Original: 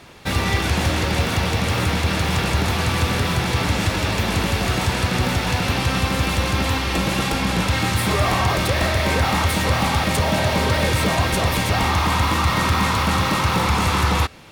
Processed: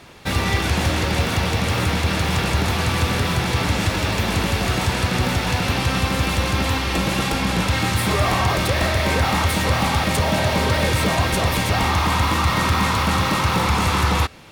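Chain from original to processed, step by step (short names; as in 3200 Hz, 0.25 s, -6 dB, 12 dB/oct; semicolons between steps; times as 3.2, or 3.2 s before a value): 3.91–4.36 modulation noise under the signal 30 dB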